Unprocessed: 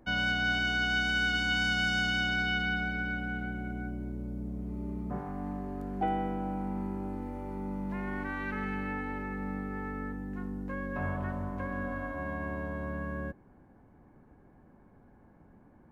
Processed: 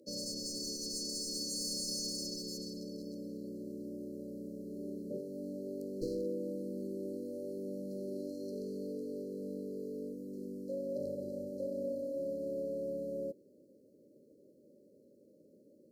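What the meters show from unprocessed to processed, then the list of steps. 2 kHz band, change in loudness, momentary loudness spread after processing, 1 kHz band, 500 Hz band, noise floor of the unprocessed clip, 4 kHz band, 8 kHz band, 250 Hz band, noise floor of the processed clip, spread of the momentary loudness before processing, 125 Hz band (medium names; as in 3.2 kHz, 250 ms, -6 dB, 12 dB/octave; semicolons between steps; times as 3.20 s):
under -40 dB, -7.0 dB, 8 LU, under -40 dB, +3.0 dB, -59 dBFS, -7.0 dB, no reading, -5.5 dB, -64 dBFS, 11 LU, -13.5 dB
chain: high-pass 480 Hz 12 dB/octave; one-sided clip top -31 dBFS, bottom -22.5 dBFS; brick-wall FIR band-stop 610–4000 Hz; trim +7 dB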